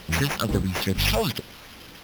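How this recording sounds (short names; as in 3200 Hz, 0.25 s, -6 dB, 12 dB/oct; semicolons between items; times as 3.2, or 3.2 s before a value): a quantiser's noise floor 8-bit, dither triangular; phasing stages 6, 2.3 Hz, lowest notch 300–2700 Hz; aliases and images of a low sample rate 8100 Hz, jitter 0%; Opus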